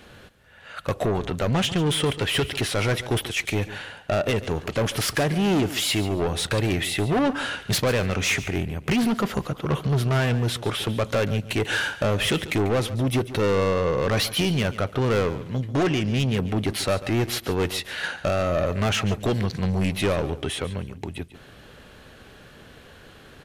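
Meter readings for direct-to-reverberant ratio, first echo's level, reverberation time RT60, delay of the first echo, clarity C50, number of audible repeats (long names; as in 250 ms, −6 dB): no reverb audible, −15.0 dB, no reverb audible, 142 ms, no reverb audible, 2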